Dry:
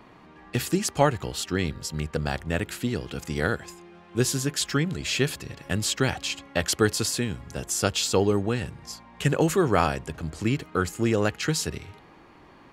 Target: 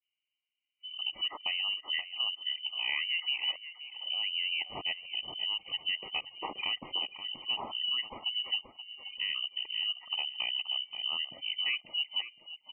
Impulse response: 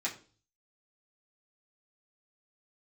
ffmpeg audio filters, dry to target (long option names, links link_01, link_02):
-filter_complex "[0:a]areverse,adynamicsmooth=sensitivity=4:basefreq=770,asuperstop=centerf=1700:order=20:qfactor=2.4,agate=range=-15dB:threshold=-50dB:ratio=16:detection=peak,asetrate=38170,aresample=44100,atempo=1.15535,equalizer=frequency=410:width_type=o:width=0.38:gain=-13,acompressor=threshold=-30dB:ratio=5,afftdn=noise_reduction=19:noise_floor=-43,lowpass=frequency=2600:width_type=q:width=0.5098,lowpass=frequency=2600:width_type=q:width=0.6013,lowpass=frequency=2600:width_type=q:width=0.9,lowpass=frequency=2600:width_type=q:width=2.563,afreqshift=-3100,asplit=2[link_01][link_02];[link_02]adelay=528,lowpass=frequency=1500:poles=1,volume=-7dB,asplit=2[link_03][link_04];[link_04]adelay=528,lowpass=frequency=1500:poles=1,volume=0.2,asplit=2[link_05][link_06];[link_06]adelay=528,lowpass=frequency=1500:poles=1,volume=0.2[link_07];[link_03][link_05][link_07]amix=inputs=3:normalize=0[link_08];[link_01][link_08]amix=inputs=2:normalize=0"